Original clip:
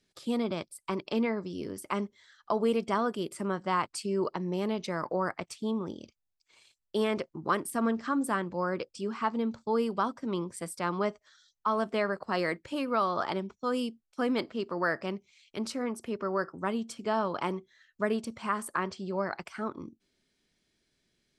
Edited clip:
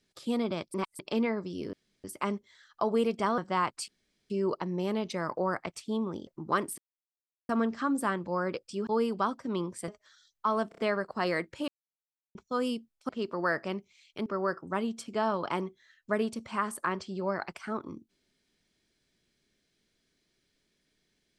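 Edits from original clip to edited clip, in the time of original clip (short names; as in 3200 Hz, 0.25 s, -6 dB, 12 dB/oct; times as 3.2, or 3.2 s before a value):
0.74–0.99 reverse
1.73 insert room tone 0.31 s
3.07–3.54 cut
4.04 insert room tone 0.42 s
6.01–7.24 cut
7.75 insert silence 0.71 s
9.13–9.65 cut
10.66–11.09 cut
11.9 stutter 0.03 s, 4 plays
12.8–13.47 mute
14.21–14.47 cut
15.64–16.17 cut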